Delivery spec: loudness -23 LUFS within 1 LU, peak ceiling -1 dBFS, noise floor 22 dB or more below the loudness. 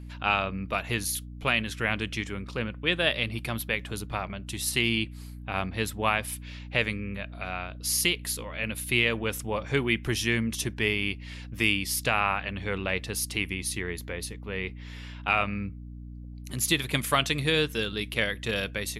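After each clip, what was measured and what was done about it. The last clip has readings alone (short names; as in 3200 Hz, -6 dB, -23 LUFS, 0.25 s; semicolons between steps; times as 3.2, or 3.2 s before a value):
hum 60 Hz; harmonics up to 300 Hz; hum level -39 dBFS; loudness -28.0 LUFS; peak -9.5 dBFS; loudness target -23.0 LUFS
-> de-hum 60 Hz, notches 5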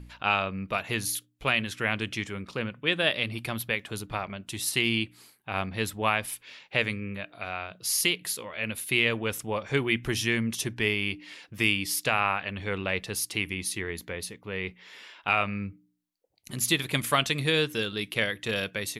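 hum none; loudness -28.5 LUFS; peak -9.5 dBFS; loudness target -23.0 LUFS
-> gain +5.5 dB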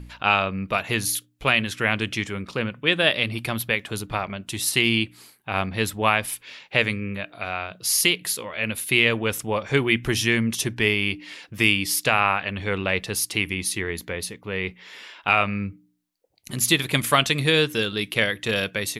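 loudness -23.0 LUFS; peak -4.0 dBFS; noise floor -59 dBFS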